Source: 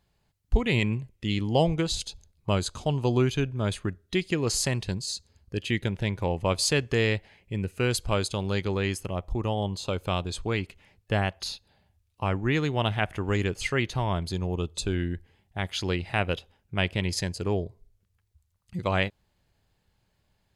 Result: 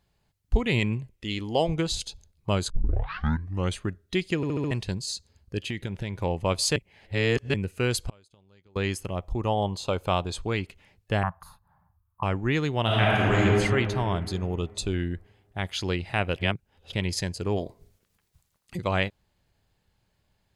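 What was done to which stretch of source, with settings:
0:01.15–0:01.69: parametric band 140 Hz −10 dB 1.2 octaves
0:02.70: tape start 1.08 s
0:04.36: stutter in place 0.07 s, 5 plays
0:05.67–0:06.18: downward compressor, threshold −26 dBFS
0:06.76–0:07.54: reverse
0:08.07–0:08.76: gate with flip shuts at −21 dBFS, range −31 dB
0:09.45–0:10.43: dynamic equaliser 830 Hz, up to +6 dB, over −42 dBFS, Q 0.95
0:11.23–0:12.23: drawn EQ curve 110 Hz 0 dB, 170 Hz +4 dB, 290 Hz −19 dB, 500 Hz −14 dB, 1,100 Hz +14 dB, 2,700 Hz −24 dB, 5,600 Hz −28 dB, 13,000 Hz +1 dB
0:12.84–0:13.39: thrown reverb, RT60 2.6 s, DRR −6.5 dB
0:14.46–0:14.94: notch filter 1,600 Hz, Q 5.9
0:16.36–0:16.93: reverse
0:17.56–0:18.76: ceiling on every frequency bin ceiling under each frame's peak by 19 dB

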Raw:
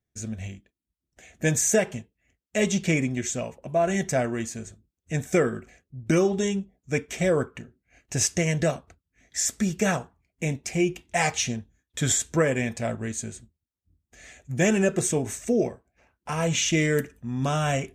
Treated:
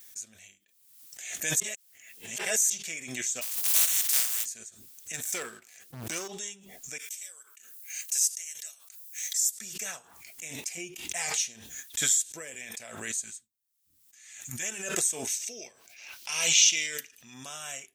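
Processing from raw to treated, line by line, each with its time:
0:01.60–0:02.70: reverse
0:03.41–0:04.44: compressing power law on the bin magnitudes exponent 0.19
0:05.13–0:06.28: leveller curve on the samples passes 2
0:06.98–0:09.58: first difference
0:10.77–0:11.42: low-shelf EQ 500 Hz +8.5 dB
0:12.11–0:12.61: parametric band 1,200 Hz −7.5 dB 1.1 octaves
0:13.24–0:14.63: flat-topped bell 520 Hz −11.5 dB 1.1 octaves
0:15.27–0:17.34: flat-topped bell 3,700 Hz +11 dB
whole clip: first difference; background raised ahead of every attack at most 51 dB per second

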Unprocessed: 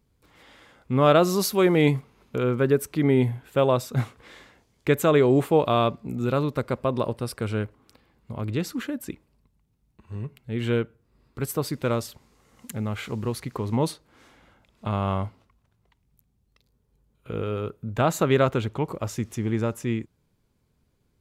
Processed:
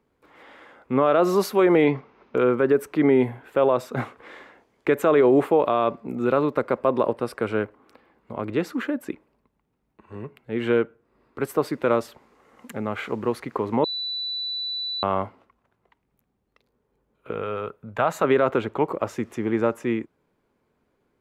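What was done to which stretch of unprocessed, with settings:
0:01.84–0:02.36: Butterworth low-pass 6,200 Hz 72 dB per octave
0:13.84–0:15.03: beep over 3,970 Hz −22 dBFS
0:17.33–0:18.24: parametric band 320 Hz −10.5 dB 1.1 octaves
whole clip: three-way crossover with the lows and the highs turned down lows −17 dB, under 250 Hz, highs −15 dB, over 2,400 Hz; brickwall limiter −16.5 dBFS; level +7 dB

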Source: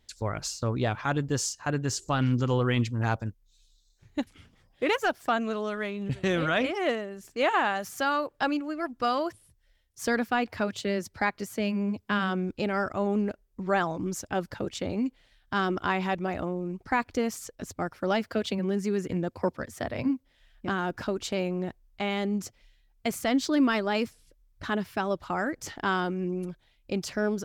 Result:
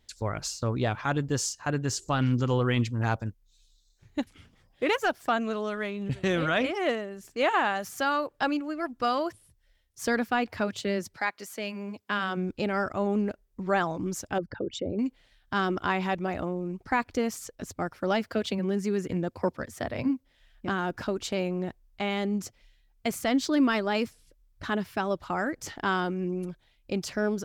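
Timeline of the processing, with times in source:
0:11.15–0:12.36: high-pass filter 930 Hz → 360 Hz 6 dB per octave
0:14.38–0:14.99: spectral envelope exaggerated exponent 2

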